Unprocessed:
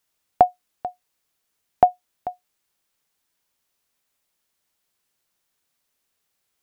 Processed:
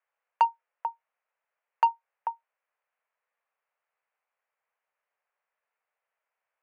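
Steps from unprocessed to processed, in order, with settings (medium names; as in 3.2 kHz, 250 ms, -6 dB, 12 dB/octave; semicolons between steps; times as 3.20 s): mistuned SSB +200 Hz 260–2400 Hz; overdrive pedal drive 17 dB, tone 1.2 kHz, clips at -1 dBFS; trim -9 dB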